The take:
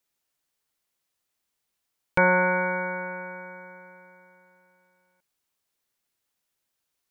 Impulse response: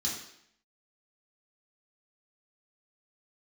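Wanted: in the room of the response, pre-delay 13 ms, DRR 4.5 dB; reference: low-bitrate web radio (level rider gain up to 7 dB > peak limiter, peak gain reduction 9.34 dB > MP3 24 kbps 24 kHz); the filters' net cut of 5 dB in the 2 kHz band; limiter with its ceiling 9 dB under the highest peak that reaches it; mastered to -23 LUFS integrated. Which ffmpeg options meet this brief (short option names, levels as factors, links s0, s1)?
-filter_complex "[0:a]equalizer=f=2000:t=o:g=-8,alimiter=limit=0.119:level=0:latency=1,asplit=2[s0][s1];[1:a]atrim=start_sample=2205,adelay=13[s2];[s1][s2]afir=irnorm=-1:irlink=0,volume=0.376[s3];[s0][s3]amix=inputs=2:normalize=0,dynaudnorm=m=2.24,alimiter=level_in=1.19:limit=0.0631:level=0:latency=1,volume=0.841,volume=4.22" -ar 24000 -c:a libmp3lame -b:a 24k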